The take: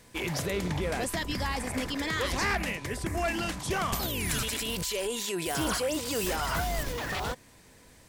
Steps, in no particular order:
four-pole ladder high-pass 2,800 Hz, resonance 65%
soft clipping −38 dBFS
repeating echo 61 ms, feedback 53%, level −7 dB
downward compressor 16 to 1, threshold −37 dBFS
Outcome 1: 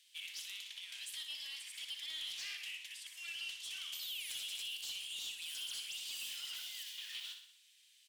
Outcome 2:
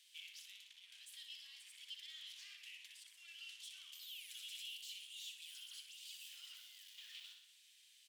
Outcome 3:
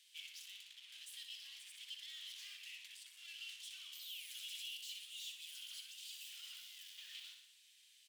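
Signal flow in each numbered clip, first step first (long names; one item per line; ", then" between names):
four-pole ladder high-pass, then downward compressor, then soft clipping, then repeating echo
downward compressor, then repeating echo, then soft clipping, then four-pole ladder high-pass
soft clipping, then repeating echo, then downward compressor, then four-pole ladder high-pass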